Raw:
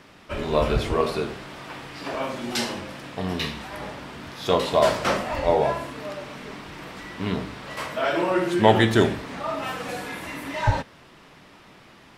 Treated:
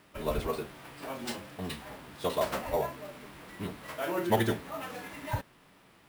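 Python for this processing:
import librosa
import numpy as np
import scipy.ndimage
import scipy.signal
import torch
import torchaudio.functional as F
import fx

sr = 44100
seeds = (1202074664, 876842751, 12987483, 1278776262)

y = fx.sample_hold(x, sr, seeds[0], rate_hz=13000.0, jitter_pct=0)
y = fx.stretch_vocoder(y, sr, factor=0.5)
y = y * 10.0 ** (-8.0 / 20.0)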